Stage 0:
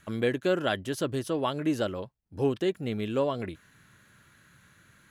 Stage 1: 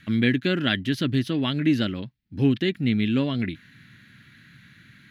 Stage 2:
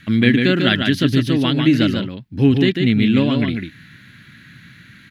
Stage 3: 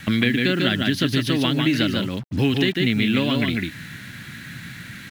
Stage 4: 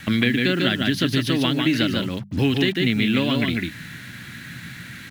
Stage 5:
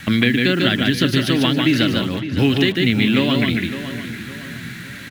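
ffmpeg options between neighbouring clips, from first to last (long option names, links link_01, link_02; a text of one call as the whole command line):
ffmpeg -i in.wav -af "equalizer=frequency=125:width_type=o:width=1:gain=8,equalizer=frequency=250:width_type=o:width=1:gain=12,equalizer=frequency=500:width_type=o:width=1:gain=-8,equalizer=frequency=1000:width_type=o:width=1:gain=-7,equalizer=frequency=2000:width_type=o:width=1:gain=11,equalizer=frequency=4000:width_type=o:width=1:gain=10,equalizer=frequency=8000:width_type=o:width=1:gain=-10" out.wav
ffmpeg -i in.wav -af "aecho=1:1:146:0.562,volume=6.5dB" out.wav
ffmpeg -i in.wav -filter_complex "[0:a]acrossover=split=570|2100[link_01][link_02][link_03];[link_01]acompressor=threshold=-28dB:ratio=4[link_04];[link_02]acompressor=threshold=-36dB:ratio=4[link_05];[link_03]acompressor=threshold=-32dB:ratio=4[link_06];[link_04][link_05][link_06]amix=inputs=3:normalize=0,acrusher=bits=7:mix=0:aa=0.5,volume=6.5dB" out.wav
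ffmpeg -i in.wav -af "bandreject=frequency=50:width_type=h:width=6,bandreject=frequency=100:width_type=h:width=6,bandreject=frequency=150:width_type=h:width=6,bandreject=frequency=200:width_type=h:width=6" out.wav
ffmpeg -i in.wav -filter_complex "[0:a]asplit=2[link_01][link_02];[link_02]adelay=560,lowpass=frequency=3900:poles=1,volume=-11.5dB,asplit=2[link_03][link_04];[link_04]adelay=560,lowpass=frequency=3900:poles=1,volume=0.39,asplit=2[link_05][link_06];[link_06]adelay=560,lowpass=frequency=3900:poles=1,volume=0.39,asplit=2[link_07][link_08];[link_08]adelay=560,lowpass=frequency=3900:poles=1,volume=0.39[link_09];[link_01][link_03][link_05][link_07][link_09]amix=inputs=5:normalize=0,volume=3.5dB" out.wav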